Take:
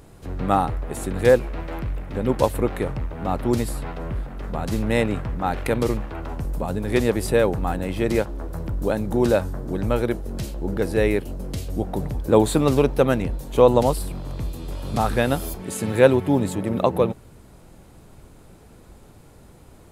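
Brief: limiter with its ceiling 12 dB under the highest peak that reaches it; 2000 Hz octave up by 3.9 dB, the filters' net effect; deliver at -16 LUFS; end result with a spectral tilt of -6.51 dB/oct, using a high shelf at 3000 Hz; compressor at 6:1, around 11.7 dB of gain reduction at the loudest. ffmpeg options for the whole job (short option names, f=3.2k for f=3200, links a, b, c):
-af "equalizer=f=2k:t=o:g=6.5,highshelf=f=3k:g=-4.5,acompressor=threshold=-21dB:ratio=6,volume=15dB,alimiter=limit=-4.5dB:level=0:latency=1"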